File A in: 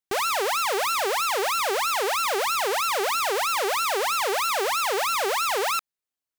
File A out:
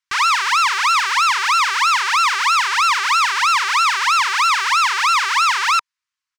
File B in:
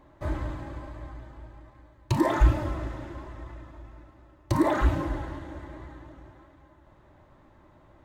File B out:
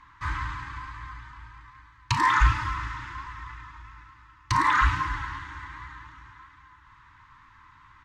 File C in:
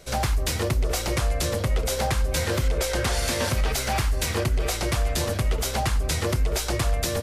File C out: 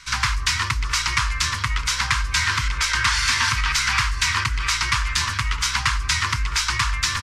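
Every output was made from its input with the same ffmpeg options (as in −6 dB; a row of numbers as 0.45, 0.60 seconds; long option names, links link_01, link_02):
-af "firequalizer=gain_entry='entry(120,0);entry(180,-8);entry(260,-8);entry(440,-22);entry(680,-26);entry(960,12);entry(2000,13);entry(3600,9);entry(5300,11);entry(13000,-10)':delay=0.05:min_phase=1,volume=-1.5dB"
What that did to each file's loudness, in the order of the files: +8.5, +2.0, +4.5 LU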